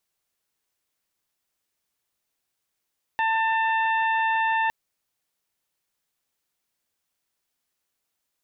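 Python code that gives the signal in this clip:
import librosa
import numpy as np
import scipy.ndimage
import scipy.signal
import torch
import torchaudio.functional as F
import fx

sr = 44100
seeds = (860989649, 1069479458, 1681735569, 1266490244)

y = fx.additive_steady(sr, length_s=1.51, hz=894.0, level_db=-22.0, upper_db=(-3.0, -10.5, -19.5))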